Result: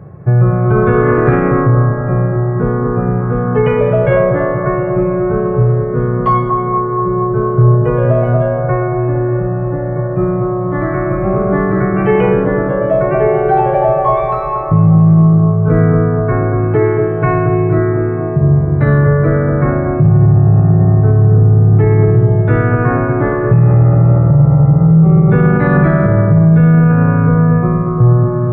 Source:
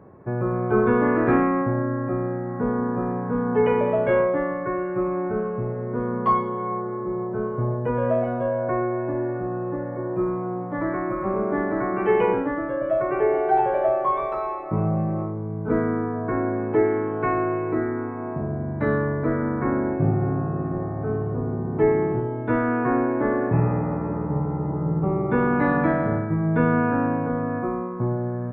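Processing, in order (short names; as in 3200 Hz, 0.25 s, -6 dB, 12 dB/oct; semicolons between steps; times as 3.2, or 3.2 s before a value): resonant low shelf 190 Hz +7 dB, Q 3; notch 950 Hz, Q 6.4; analogue delay 0.234 s, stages 2048, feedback 64%, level -4.5 dB; maximiser +10 dB; gain -1 dB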